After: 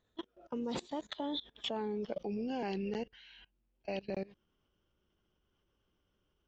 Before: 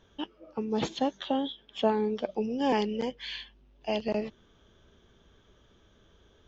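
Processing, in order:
source passing by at 0:01.81, 32 m/s, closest 20 metres
output level in coarse steps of 21 dB
level +5.5 dB

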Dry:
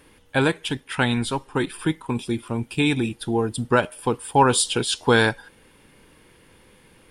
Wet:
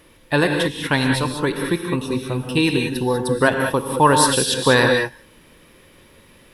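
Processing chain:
reverb whose tail is shaped and stops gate 240 ms rising, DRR 3 dB
wrong playback speed 44.1 kHz file played as 48 kHz
level +2 dB

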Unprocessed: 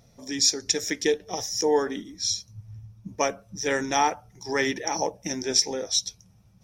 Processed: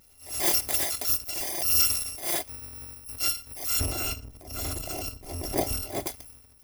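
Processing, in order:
samples in bit-reversed order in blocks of 256 samples
0:03.79–0:06.07: tilt shelving filter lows +10 dB, about 900 Hz
transient designer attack −9 dB, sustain +9 dB

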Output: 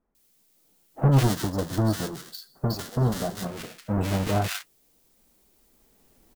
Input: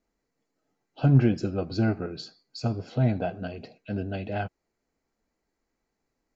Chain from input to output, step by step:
each half-wave held at its own peak
camcorder AGC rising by 6.7 dB per second
flanger 0.34 Hz, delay 4.7 ms, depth 2.2 ms, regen −57%
background noise blue −65 dBFS
0:01.08–0:03.32: parametric band 2,400 Hz −14 dB 0.53 octaves
multiband delay without the direct sound lows, highs 150 ms, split 1,400 Hz

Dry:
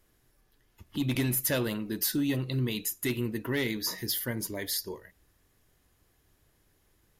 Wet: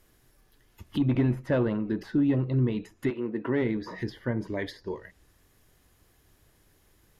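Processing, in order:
treble cut that deepens with the level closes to 1,200 Hz, closed at −29 dBFS
0:03.09–0:03.61: high-pass filter 460 Hz → 120 Hz 12 dB per octave
level +5 dB

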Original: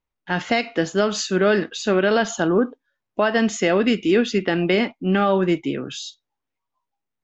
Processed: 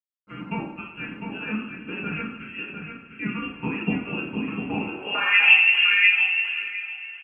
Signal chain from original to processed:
in parallel at +1 dB: output level in coarse steps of 18 dB
on the sum: voice inversion scrambler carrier 3,000 Hz
slack as between gear wheels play −37 dBFS
on a send: repeating echo 702 ms, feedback 15%, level −6.5 dB
on the sum: coupled-rooms reverb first 0.54 s, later 3.9 s, from −18 dB, DRR −3.5 dB
band-pass filter sweep 240 Hz → 2,100 Hz, 0:04.87–0:05.50

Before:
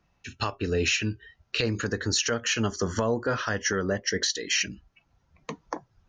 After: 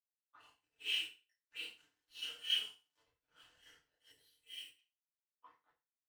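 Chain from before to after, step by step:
random phases in long frames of 200 ms
0:01.57–0:02.02: graphic EQ with 15 bands 250 Hz +12 dB, 630 Hz −6 dB, 6,300 Hz +4 dB
soft clipping −17 dBFS, distortion −22 dB
high-pass filter 180 Hz 6 dB per octave
high-shelf EQ 2,500 Hz −12 dB
envelope filter 690–3,100 Hz, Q 8.1, up, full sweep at −33.5 dBFS
dead-zone distortion −55.5 dBFS
feedback delay network reverb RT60 0.4 s, low-frequency decay 0.9×, high-frequency decay 1×, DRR −5 dB
0:04.12–0:04.79: gain on a spectral selection 640–7,600 Hz −8 dB
multiband upward and downward expander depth 100%
level −5.5 dB

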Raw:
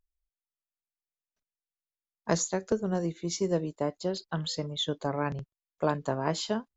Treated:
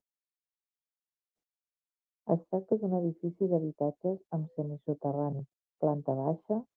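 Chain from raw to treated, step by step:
Chebyshev band-pass filter 130–760 Hz, order 3
Opus 32 kbit/s 48,000 Hz

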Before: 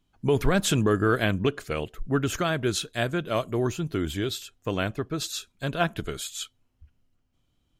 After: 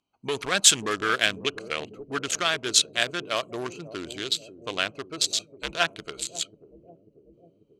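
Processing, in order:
adaptive Wiener filter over 25 samples
meter weighting curve ITU-R 468
0:05.26–0:05.75: frequency shifter −85 Hz
bucket-brigade delay 541 ms, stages 2,048, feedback 68%, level −12.5 dB
saturating transformer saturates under 3,300 Hz
level +2.5 dB

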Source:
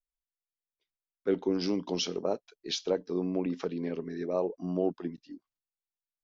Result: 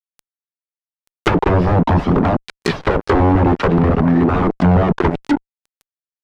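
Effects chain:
variable-slope delta modulation 64 kbit/s
high-pass filter 71 Hz 24 dB per octave
wrap-around overflow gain 26.5 dB
dynamic equaliser 490 Hz, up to −8 dB, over −51 dBFS, Q 0.94
flanger 0.46 Hz, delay 0.8 ms, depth 1.9 ms, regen −16%
surface crackle 16 per second −56 dBFS
fuzz pedal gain 53 dB, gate −52 dBFS
treble cut that deepens with the level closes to 770 Hz, closed at −13.5 dBFS
level +5 dB

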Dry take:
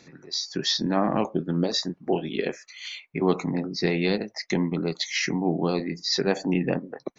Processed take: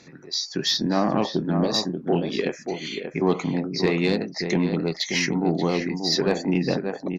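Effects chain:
slap from a distant wall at 100 metres, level −7 dB
harmonic generator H 5 −24 dB, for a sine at −7 dBFS

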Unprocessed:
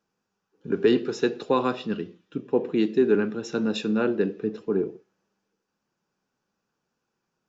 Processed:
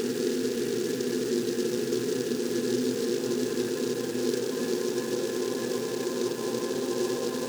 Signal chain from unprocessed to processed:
low-pass filter 4,900 Hz
extreme stretch with random phases 36×, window 1.00 s, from 0:01.08
on a send: echo through a band-pass that steps 751 ms, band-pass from 170 Hz, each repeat 0.7 octaves, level −4 dB
on the sum: short delay modulated by noise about 4,900 Hz, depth 0.08 ms
level −4.5 dB

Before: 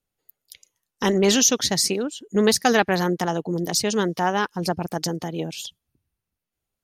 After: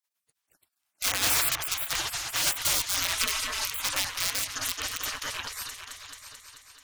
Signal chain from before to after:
in parallel at −3.5 dB: wrap-around overflow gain 15 dB
on the sum: echo whose low-pass opens from repeat to repeat 218 ms, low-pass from 750 Hz, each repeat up 2 octaves, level −6 dB
gate on every frequency bin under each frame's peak −25 dB weak
0:03.16–0:03.65: comb filter 4.6 ms, depth 62%
level +2.5 dB

